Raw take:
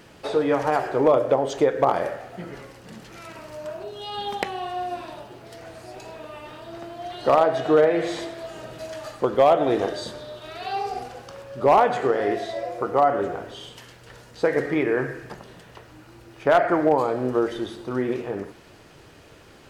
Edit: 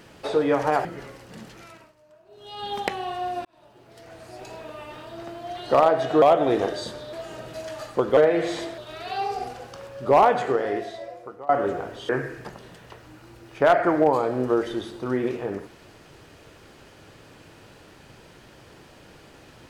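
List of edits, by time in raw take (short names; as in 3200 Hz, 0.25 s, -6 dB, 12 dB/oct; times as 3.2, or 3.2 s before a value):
0.85–2.4 cut
2.99–4.32 dip -21 dB, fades 0.50 s
5–6.03 fade in linear
7.77–8.38 swap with 9.42–10.33
11.88–13.04 fade out, to -24 dB
13.64–14.94 cut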